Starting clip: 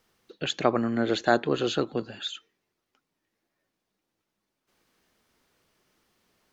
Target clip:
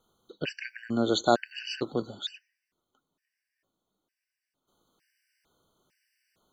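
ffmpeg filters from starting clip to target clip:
-filter_complex "[0:a]asettb=1/sr,asplit=3[a][b][c];[a]atrim=end=0.634[d];[b]atrim=start=0.63:end=2.14,asetpts=PTS-STARTPTS,afade=t=in:d=0.004:c=qsin,afade=t=out:st=1.506:d=0.004:c=qsin,highshelf=f=4.6k:g=9.5[e];[c]atrim=start=2.136[f];[d][e]acrossfade=d=0.004:c1=hsin:c2=qsin[g];[g][f]acrossfade=d=0.004:c1=qsin:c2=hsin,afftfilt=real='re*gt(sin(2*PI*1.1*pts/sr)*(1-2*mod(floor(b*sr/1024/1500),2)),0)':imag='im*gt(sin(2*PI*1.1*pts/sr)*(1-2*mod(floor(b*sr/1024/1500),2)),0)':win_size=1024:overlap=0.75"

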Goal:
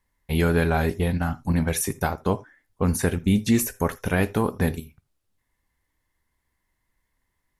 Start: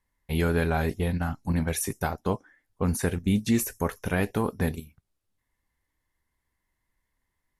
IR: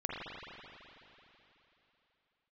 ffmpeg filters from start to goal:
-filter_complex "[0:a]asplit=2[a][b];[1:a]atrim=start_sample=2205,atrim=end_sample=3969[c];[b][c]afir=irnorm=-1:irlink=0,volume=-15dB[d];[a][d]amix=inputs=2:normalize=0,volume=2.5dB"

